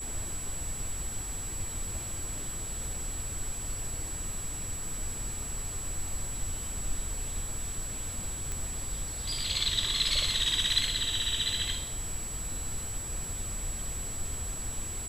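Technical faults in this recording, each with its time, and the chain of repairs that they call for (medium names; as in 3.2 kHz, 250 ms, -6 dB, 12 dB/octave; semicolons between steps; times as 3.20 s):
whine 7.8 kHz -37 dBFS
8.52 s: pop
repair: de-click; band-stop 7.8 kHz, Q 30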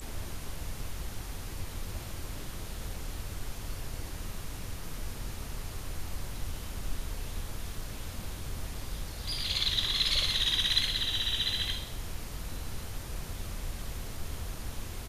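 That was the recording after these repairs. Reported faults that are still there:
nothing left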